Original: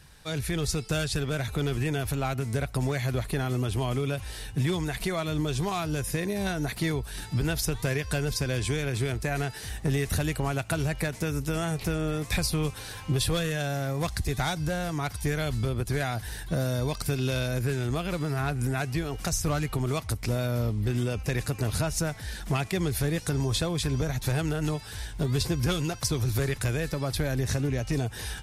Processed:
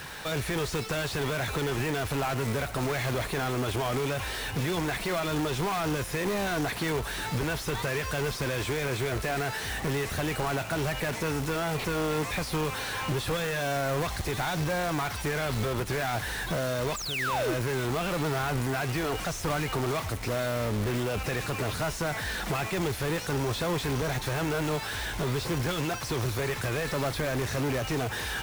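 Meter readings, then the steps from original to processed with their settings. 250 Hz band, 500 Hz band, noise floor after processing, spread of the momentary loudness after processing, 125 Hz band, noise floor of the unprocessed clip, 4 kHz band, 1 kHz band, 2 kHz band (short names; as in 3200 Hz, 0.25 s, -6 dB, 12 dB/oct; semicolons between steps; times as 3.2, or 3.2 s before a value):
-2.0 dB, +1.5 dB, -36 dBFS, 2 LU, -4.5 dB, -41 dBFS, +0.5 dB, +4.0 dB, +3.0 dB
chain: painted sound fall, 16.96–17.54, 290–8100 Hz -27 dBFS; limiter -25.5 dBFS, peak gain reduction 11 dB; overdrive pedal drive 26 dB, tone 1800 Hz, clips at -25 dBFS; notch 4800 Hz, Q 25; companded quantiser 4-bit; gain +2.5 dB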